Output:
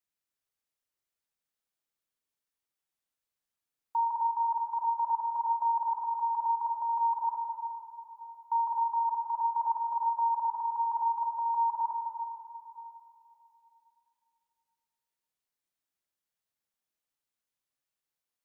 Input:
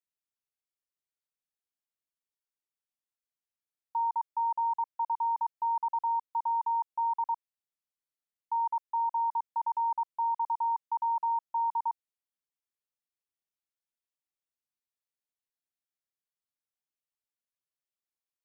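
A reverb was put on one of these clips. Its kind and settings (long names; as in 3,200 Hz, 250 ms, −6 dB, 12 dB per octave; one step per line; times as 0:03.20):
dense smooth reverb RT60 2.9 s, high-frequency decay 0.65×, DRR 1.5 dB
level +2 dB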